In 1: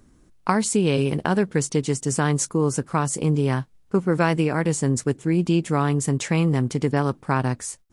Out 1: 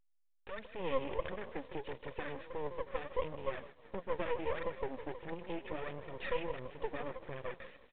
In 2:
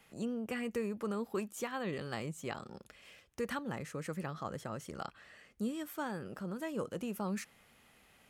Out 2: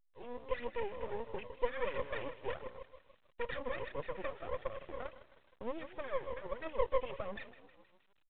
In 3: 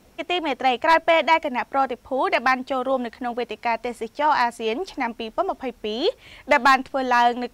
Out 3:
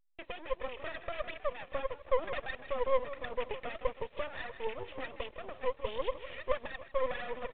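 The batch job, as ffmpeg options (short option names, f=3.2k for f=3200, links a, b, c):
-filter_complex "[0:a]aemphasis=mode=reproduction:type=cd,agate=range=-27dB:threshold=-48dB:ratio=16:detection=peak,asubboost=boost=9:cutoff=63,aphaser=in_gain=1:out_gain=1:delay=4.3:decay=0.71:speed=1.5:type=triangular,acompressor=threshold=-32dB:ratio=5,asplit=2[a][b];[b]asplit=5[c][d][e][f][g];[c]adelay=157,afreqshift=40,volume=-16dB[h];[d]adelay=314,afreqshift=80,volume=-21.8dB[i];[e]adelay=471,afreqshift=120,volume=-27.7dB[j];[f]adelay=628,afreqshift=160,volume=-33.5dB[k];[g]adelay=785,afreqshift=200,volume=-39.4dB[l];[h][i][j][k][l]amix=inputs=5:normalize=0[m];[a][m]amix=inputs=2:normalize=0,asoftclip=type=tanh:threshold=-31dB,asplit=3[n][o][p];[n]bandpass=f=530:t=q:w=8,volume=0dB[q];[o]bandpass=f=1.84k:t=q:w=8,volume=-6dB[r];[p]bandpass=f=2.48k:t=q:w=8,volume=-9dB[s];[q][r][s]amix=inputs=3:normalize=0,aresample=16000,aeval=exprs='max(val(0),0)':c=same,aresample=44100,dynaudnorm=f=150:g=9:m=5.5dB,volume=9.5dB" -ar 8000 -c:a pcm_alaw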